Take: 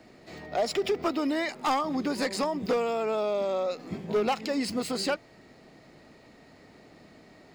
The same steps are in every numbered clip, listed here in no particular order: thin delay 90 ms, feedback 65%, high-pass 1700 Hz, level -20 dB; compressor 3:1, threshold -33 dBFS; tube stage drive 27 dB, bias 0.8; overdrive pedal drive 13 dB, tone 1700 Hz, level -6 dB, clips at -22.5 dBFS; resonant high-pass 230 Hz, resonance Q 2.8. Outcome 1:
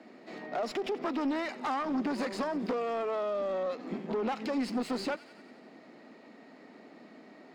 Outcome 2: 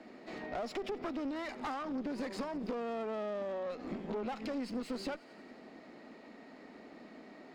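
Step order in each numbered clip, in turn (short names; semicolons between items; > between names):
tube stage > thin delay > compressor > resonant high-pass > overdrive pedal; resonant high-pass > overdrive pedal > thin delay > compressor > tube stage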